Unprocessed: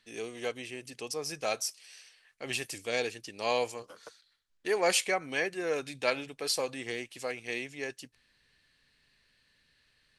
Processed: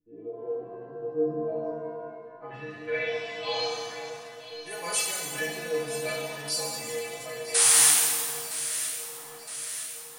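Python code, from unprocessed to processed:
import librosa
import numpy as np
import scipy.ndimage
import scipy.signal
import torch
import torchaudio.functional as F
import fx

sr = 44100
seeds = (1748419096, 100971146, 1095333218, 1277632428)

y = fx.peak_eq(x, sr, hz=74.0, db=14.0, octaves=1.6)
y = fx.stiff_resonator(y, sr, f0_hz=150.0, decay_s=0.51, stiffness=0.008)
y = fx.spec_paint(y, sr, seeds[0], shape='noise', start_s=7.54, length_s=0.37, low_hz=710.0, high_hz=11000.0, level_db=-36.0)
y = fx.filter_sweep_lowpass(y, sr, from_hz=360.0, to_hz=9500.0, start_s=1.45, end_s=4.4, q=4.3)
y = fx.echo_alternate(y, sr, ms=482, hz=1200.0, feedback_pct=77, wet_db=-10)
y = fx.rev_shimmer(y, sr, seeds[1], rt60_s=1.6, semitones=7, shimmer_db=-8, drr_db=-3.0)
y = y * librosa.db_to_amplitude(7.0)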